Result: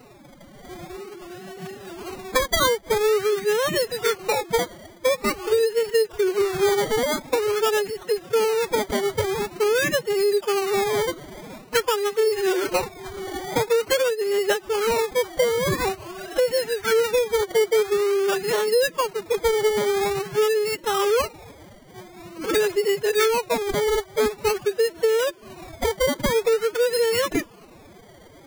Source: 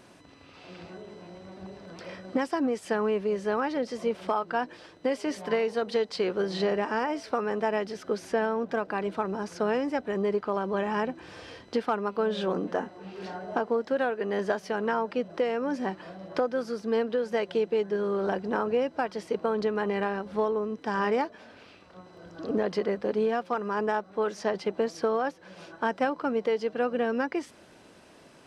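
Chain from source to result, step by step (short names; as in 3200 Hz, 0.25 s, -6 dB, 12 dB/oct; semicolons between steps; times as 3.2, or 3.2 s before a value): treble ducked by the level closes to 990 Hz, closed at -24 dBFS; decimation with a swept rate 26×, swing 60% 0.47 Hz; formant-preserving pitch shift +12 st; gain +7.5 dB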